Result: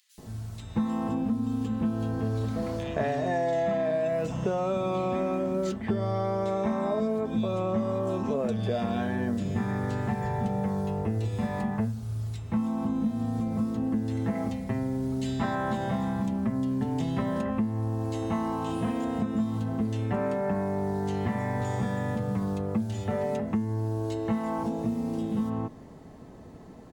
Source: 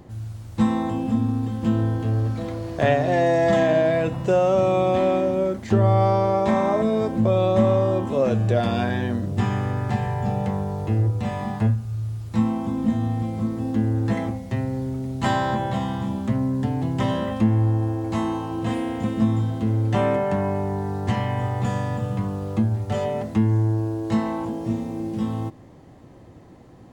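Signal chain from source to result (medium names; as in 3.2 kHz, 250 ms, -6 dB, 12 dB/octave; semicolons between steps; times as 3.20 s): comb 4.6 ms, depth 42%; compression, threshold -25 dBFS, peak gain reduction 12.5 dB; bands offset in time highs, lows 180 ms, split 2.6 kHz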